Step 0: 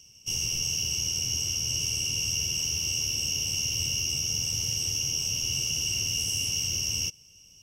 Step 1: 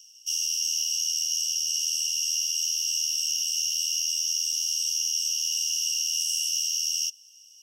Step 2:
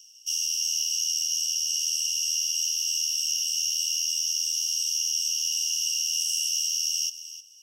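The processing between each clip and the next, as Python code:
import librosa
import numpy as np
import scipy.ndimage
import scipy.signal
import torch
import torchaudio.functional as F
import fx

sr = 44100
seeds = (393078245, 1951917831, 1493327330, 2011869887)

y1 = scipy.signal.sosfilt(scipy.signal.butter(12, 2900.0, 'highpass', fs=sr, output='sos'), x)
y1 = y1 * librosa.db_to_amplitude(2.5)
y2 = y1 + 10.0 ** (-13.5 / 20.0) * np.pad(y1, (int(309 * sr / 1000.0), 0))[:len(y1)]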